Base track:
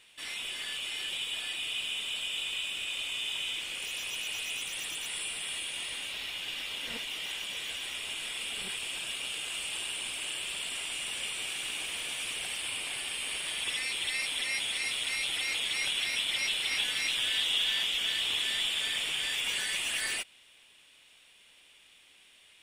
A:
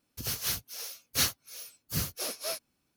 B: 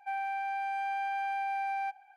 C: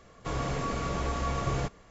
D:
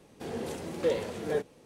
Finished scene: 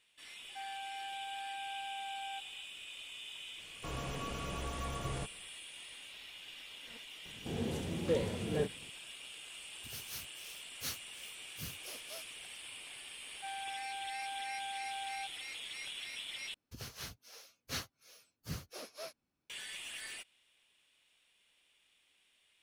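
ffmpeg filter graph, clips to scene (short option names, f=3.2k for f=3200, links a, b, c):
-filter_complex "[2:a]asplit=2[a][b];[1:a]asplit=2[c][d];[0:a]volume=-13dB[e];[4:a]bass=f=250:g=12,treble=f=4k:g=2[f];[d]aemphasis=mode=reproduction:type=50kf[g];[e]asplit=2[h][i];[h]atrim=end=16.544[j];[g]atrim=end=2.96,asetpts=PTS-STARTPTS,volume=-8dB[k];[i]atrim=start=19.496[l];[a]atrim=end=2.16,asetpts=PTS-STARTPTS,volume=-10.5dB,afade=t=in:d=0.004:c=hsin,afade=t=out:st=2.156:d=0.004:c=hsin,adelay=490[m];[3:a]atrim=end=1.9,asetpts=PTS-STARTPTS,volume=-9.5dB,afade=t=in:d=0.004:c=hsin,afade=t=out:st=1.896:d=0.004:c=hsin,adelay=3580[n];[f]atrim=end=1.65,asetpts=PTS-STARTPTS,volume=-6dB,afade=t=in:d=0.004:c=hsin,afade=t=out:st=1.646:d=0.004:c=hsin,adelay=7250[o];[c]atrim=end=2.96,asetpts=PTS-STARTPTS,volume=-14dB,afade=t=in:d=0.004:c=hsin,afade=t=out:st=2.956:d=0.004:c=hsin,adelay=9660[p];[b]atrim=end=2.16,asetpts=PTS-STARTPTS,volume=-9.5dB,afade=t=in:d=0.004:c=hsin,afade=t=out:st=2.156:d=0.004:c=hsin,adelay=13360[q];[j][k]acrossfade=d=0.004:c1=hsin:c2=hsin[r];[r][l]acrossfade=d=0.004:c1=hsin:c2=hsin[s];[s][m][n][o][p][q]amix=inputs=6:normalize=0"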